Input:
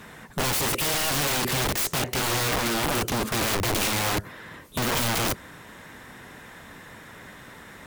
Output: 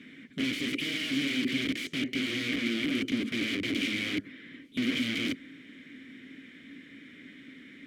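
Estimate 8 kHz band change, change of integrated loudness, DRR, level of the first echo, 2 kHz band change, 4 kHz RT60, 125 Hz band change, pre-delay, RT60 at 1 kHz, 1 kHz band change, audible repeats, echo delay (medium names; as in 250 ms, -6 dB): -18.5 dB, -6.0 dB, no reverb, no echo, -3.5 dB, no reverb, -13.0 dB, no reverb, no reverb, -23.0 dB, no echo, no echo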